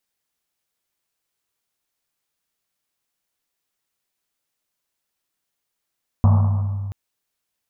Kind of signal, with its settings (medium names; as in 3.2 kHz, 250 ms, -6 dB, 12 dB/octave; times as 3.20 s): Risset drum length 0.68 s, pitch 99 Hz, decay 2.65 s, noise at 860 Hz, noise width 600 Hz, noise 10%